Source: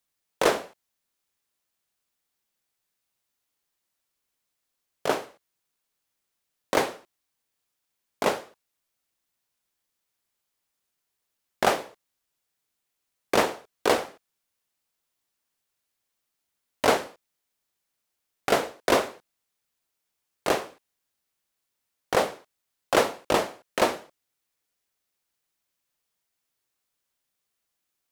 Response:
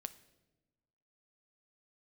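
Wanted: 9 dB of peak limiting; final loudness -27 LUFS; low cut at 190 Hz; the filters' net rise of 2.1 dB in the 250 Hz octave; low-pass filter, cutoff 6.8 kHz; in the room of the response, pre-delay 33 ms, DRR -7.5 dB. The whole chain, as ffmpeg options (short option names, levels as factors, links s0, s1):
-filter_complex "[0:a]highpass=190,lowpass=6800,equalizer=f=250:t=o:g=4,alimiter=limit=0.188:level=0:latency=1,asplit=2[s0][s1];[1:a]atrim=start_sample=2205,adelay=33[s2];[s1][s2]afir=irnorm=-1:irlink=0,volume=3.55[s3];[s0][s3]amix=inputs=2:normalize=0,volume=0.596"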